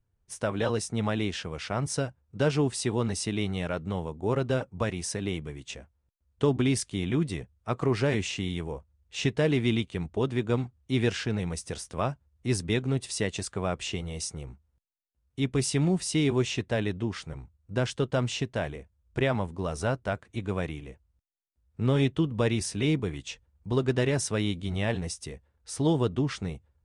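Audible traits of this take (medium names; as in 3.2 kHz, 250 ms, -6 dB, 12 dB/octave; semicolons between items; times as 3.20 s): noise floor -74 dBFS; spectral tilt -5.5 dB/octave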